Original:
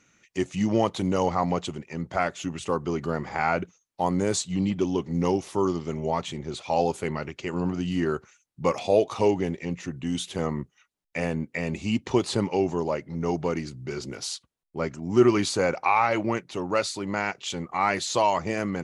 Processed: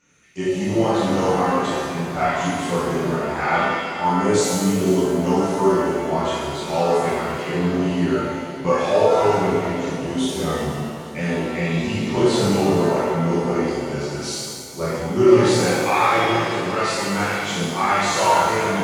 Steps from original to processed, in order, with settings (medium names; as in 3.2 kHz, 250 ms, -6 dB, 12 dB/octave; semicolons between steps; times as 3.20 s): backward echo that repeats 247 ms, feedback 69%, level -14 dB; chorus voices 2, 0.2 Hz, delay 28 ms, depth 2 ms; pitch-shifted reverb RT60 1.5 s, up +7 st, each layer -8 dB, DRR -8 dB